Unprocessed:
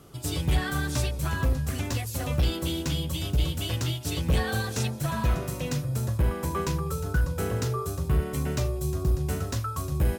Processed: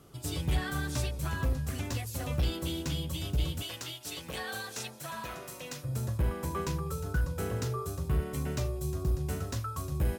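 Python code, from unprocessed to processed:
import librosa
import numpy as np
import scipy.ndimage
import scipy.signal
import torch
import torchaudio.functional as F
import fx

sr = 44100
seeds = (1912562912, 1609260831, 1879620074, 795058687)

y = fx.highpass(x, sr, hz=730.0, slope=6, at=(3.62, 5.84))
y = y * 10.0 ** (-5.0 / 20.0)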